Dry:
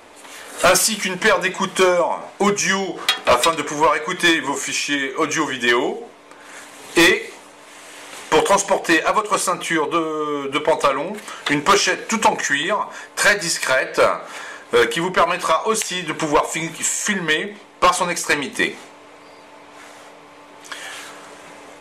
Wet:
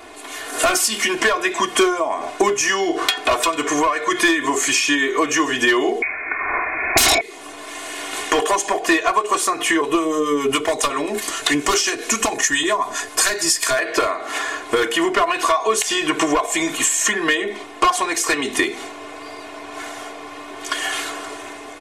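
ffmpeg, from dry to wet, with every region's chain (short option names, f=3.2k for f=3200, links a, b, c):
-filter_complex "[0:a]asettb=1/sr,asplit=3[a][b][c];[a]atrim=end=6.024[d];[b]atrim=start=6.02:end=7.21,asetpts=PTS-STARTPTS,afade=t=in:d=0.004:c=qsin,afade=t=out:st=1.186:d=0.004:c=qsin,agate=range=-9dB:threshold=-33dB:ratio=16:release=100:detection=peak,lowpass=f=2.3k:t=q:w=0.5098,lowpass=f=2.3k:t=q:w=0.6013,lowpass=f=2.3k:t=q:w=0.9,lowpass=f=2.3k:t=q:w=2.563,afreqshift=-2700,aeval=exprs='0.668*sin(PI/2*5.62*val(0)/0.668)':c=same[e];[c]atrim=start=7.206[f];[d][e]acrossfade=d=0.004:c1=hsin:c2=qsin[g];[g][f]acrossfade=d=0.004:c1=qsin:c2=hsin,asettb=1/sr,asplit=3[h][i][j];[h]atrim=end=9.814[k];[i]atrim=start=9.81:end=13.79,asetpts=PTS-STARTPTS,afade=t=in:d=0.004:c=qsin,afade=t=out:st=3.976:d=0.004:c=qsin,bass=f=250:g=5,treble=f=4k:g=9,acrossover=split=710[l][m];[l]aeval=exprs='val(0)*(1-0.5/2+0.5/2*cos(2*PI*7.4*n/s))':c=same[n];[m]aeval=exprs='val(0)*(1-0.5/2-0.5/2*cos(2*PI*7.4*n/s))':c=same[o];[n][o]amix=inputs=2:normalize=0[p];[j]atrim=start=13.786[q];[k][p]acrossfade=d=0.004:c1=hsin:c2=qsin[r];[r][q]acrossfade=d=0.004:c1=qsin:c2=hsin,acompressor=threshold=-24dB:ratio=6,aecho=1:1:2.8:0.97,dynaudnorm=f=100:g=11:m=4dB,volume=2dB"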